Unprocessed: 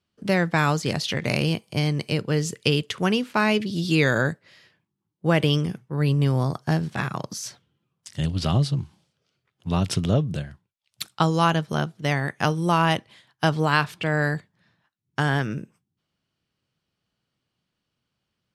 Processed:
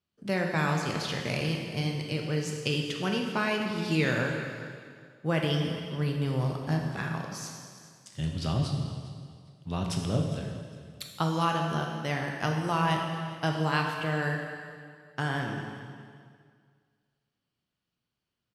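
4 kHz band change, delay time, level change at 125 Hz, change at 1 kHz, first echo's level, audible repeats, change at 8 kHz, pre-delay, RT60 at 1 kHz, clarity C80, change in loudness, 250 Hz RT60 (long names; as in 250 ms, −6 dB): −6.0 dB, 406 ms, −6.5 dB, −5.5 dB, −17.5 dB, 2, −6.0 dB, 6 ms, 2.0 s, 4.5 dB, −6.5 dB, 2.0 s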